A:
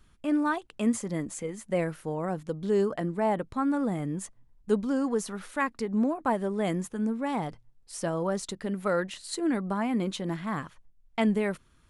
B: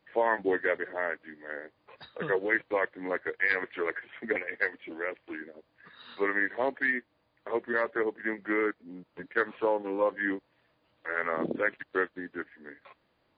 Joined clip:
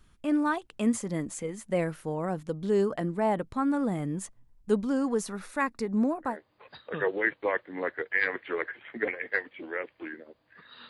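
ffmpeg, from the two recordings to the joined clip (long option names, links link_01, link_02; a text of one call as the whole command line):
ffmpeg -i cue0.wav -i cue1.wav -filter_complex "[0:a]asettb=1/sr,asplit=3[link_01][link_02][link_03];[link_01]atrim=end=5.274[link_04];[link_02]atrim=start=5.27:end=6.38,asetpts=PTS-STARTPTS,afade=type=in:duration=0.004:curve=qsin,afade=type=out:start_time=1.106:duration=0.004:curve=qsin,bandreject=frequency=3100:width=6.3[link_05];[link_03]atrim=start=6.376[link_06];[link_04][link_05]acrossfade=duration=0.004:curve1=hsin:curve2=qsin[link_07];[link_07][link_06]acrossfade=duration=0.004:curve1=qsin:curve2=hsin,apad=whole_dur=10.89,atrim=end=10.89,atrim=end=6.38,asetpts=PTS-STARTPTS[link_08];[1:a]atrim=start=1.5:end=6.17,asetpts=PTS-STARTPTS[link_09];[link_08][link_09]acrossfade=duration=0.16:curve1=tri:curve2=tri" out.wav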